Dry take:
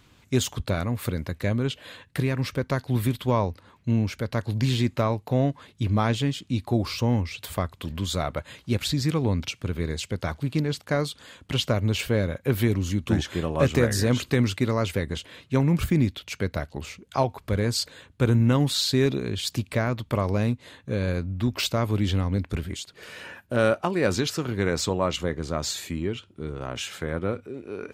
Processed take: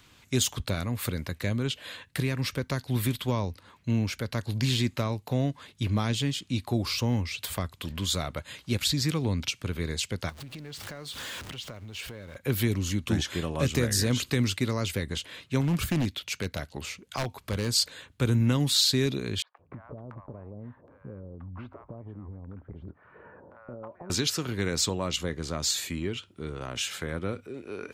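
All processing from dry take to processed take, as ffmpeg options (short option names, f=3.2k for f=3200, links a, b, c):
-filter_complex "[0:a]asettb=1/sr,asplit=3[a][b][c];[a]atrim=end=10.294[d];[b]atrim=start=10.29:end=12.36,asetpts=PTS-STARTPTS,afade=t=in:d=0.004:c=qsin,afade=t=out:st=2.066:d=0.004:c=qsin,aeval=exprs='val(0)+0.5*0.0188*sgn(val(0))':c=same,highshelf=f=7.8k:g=-5.5,acompressor=threshold=-37dB:ratio=6:attack=3.2:release=140:knee=1:detection=peak[e];[c]atrim=start=12.356[f];[d][e]acrossfade=d=0.004:c1=hsin:c2=qsin[g];[g][f]acrossfade=d=0.004:c1=qsin:c2=hsin,asettb=1/sr,asplit=3[h][i][j];[h]atrim=end=15.614[k];[i]atrim=start=15.61:end=17.74,asetpts=PTS-STARTPTS,afade=t=in:d=0.004:c=qsin,afade=t=out:st=2.126:d=0.004:c=qsin,lowshelf=f=62:g=-5.5,aeval=exprs='0.158*(abs(mod(val(0)/0.158+3,4)-2)-1)':c=same[l];[j]atrim=start=17.736[m];[k][l]acrossfade=d=0.004:c1=hsin:c2=qsin[n];[n][m]acrossfade=d=0.004:c1=qsin:c2=hsin,asettb=1/sr,asplit=3[o][p][q];[o]atrim=end=19.424[r];[p]atrim=start=19.42:end=24.1,asetpts=PTS-STARTPTS,afade=t=in:d=0.004:c=qsin,afade=t=out:st=4.676:d=0.004:c=qsin,lowpass=f=1.1k:w=0.5412,lowpass=f=1.1k:w=1.3066,acompressor=threshold=-34dB:ratio=10:attack=3.2:release=140:knee=1:detection=peak,acrossover=split=800[s][t];[s]adelay=170[u];[u][t]amix=inputs=2:normalize=0,atrim=end_sample=206388[v];[q]atrim=start=24.096[w];[r][v]acrossfade=d=0.004:c1=hsin:c2=qsin[x];[x][w]acrossfade=d=0.004:c1=qsin:c2=hsin,tiltshelf=f=970:g=-3.5,acrossover=split=360|3000[y][z][aa];[z]acompressor=threshold=-38dB:ratio=2[ab];[y][ab][aa]amix=inputs=3:normalize=0"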